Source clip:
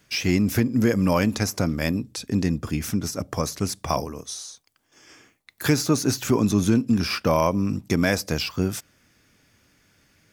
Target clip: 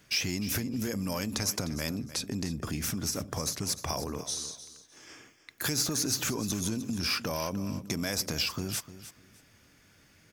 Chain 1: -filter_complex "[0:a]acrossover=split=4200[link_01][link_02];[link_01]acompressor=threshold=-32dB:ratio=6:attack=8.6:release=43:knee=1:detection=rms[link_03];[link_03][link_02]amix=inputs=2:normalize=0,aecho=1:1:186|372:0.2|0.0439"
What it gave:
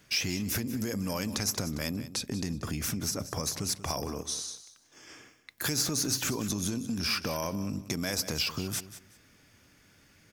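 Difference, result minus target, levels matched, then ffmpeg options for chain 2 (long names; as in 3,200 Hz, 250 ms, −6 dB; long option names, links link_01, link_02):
echo 118 ms early
-filter_complex "[0:a]acrossover=split=4200[link_01][link_02];[link_01]acompressor=threshold=-32dB:ratio=6:attack=8.6:release=43:knee=1:detection=rms[link_03];[link_03][link_02]amix=inputs=2:normalize=0,aecho=1:1:304|608:0.2|0.0439"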